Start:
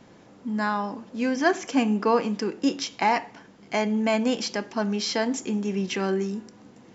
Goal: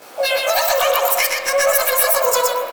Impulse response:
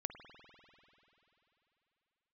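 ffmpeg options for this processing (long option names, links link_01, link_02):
-filter_complex "[0:a]highpass=frequency=47:width=0.5412,highpass=frequency=47:width=1.3066,highshelf=frequency=5300:gain=9.5,bandreject=frequency=760:width=14,bandreject=frequency=233.8:width_type=h:width=4,bandreject=frequency=467.6:width_type=h:width=4,bandreject=frequency=701.4:width_type=h:width=4,bandreject=frequency=935.2:width_type=h:width=4,acompressor=threshold=-25dB:ratio=10,asplit=2[link_01][link_02];[link_02]asetrate=58866,aresample=44100,atempo=0.749154,volume=-13dB[link_03];[link_01][link_03]amix=inputs=2:normalize=0,asoftclip=type=hard:threshold=-22dB,asetrate=112455,aresample=44100,aecho=1:1:122:0.708,asplit=2[link_04][link_05];[1:a]atrim=start_sample=2205,highshelf=frequency=4500:gain=6.5,adelay=18[link_06];[link_05][link_06]afir=irnorm=-1:irlink=0,volume=5.5dB[link_07];[link_04][link_07]amix=inputs=2:normalize=0,volume=5.5dB"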